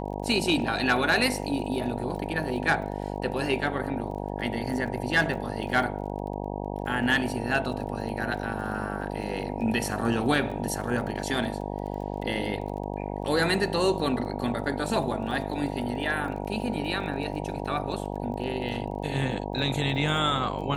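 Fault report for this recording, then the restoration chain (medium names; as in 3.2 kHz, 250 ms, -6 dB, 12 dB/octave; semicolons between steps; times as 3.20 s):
buzz 50 Hz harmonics 19 -33 dBFS
crackle 23 per s -37 dBFS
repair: de-click; de-hum 50 Hz, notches 19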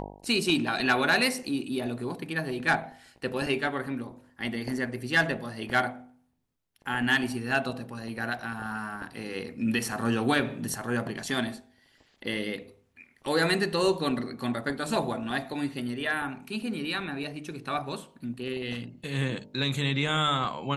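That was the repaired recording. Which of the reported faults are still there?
nothing left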